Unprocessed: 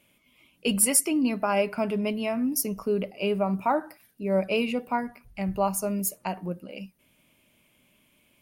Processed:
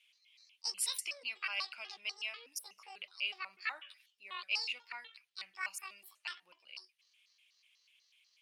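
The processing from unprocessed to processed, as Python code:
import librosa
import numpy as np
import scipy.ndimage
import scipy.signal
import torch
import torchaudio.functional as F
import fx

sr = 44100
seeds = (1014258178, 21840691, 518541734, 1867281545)

y = fx.pitch_trill(x, sr, semitones=11.0, every_ms=123)
y = fx.ladder_bandpass(y, sr, hz=3600.0, resonance_pct=35)
y = y * 10.0 ** (8.0 / 20.0)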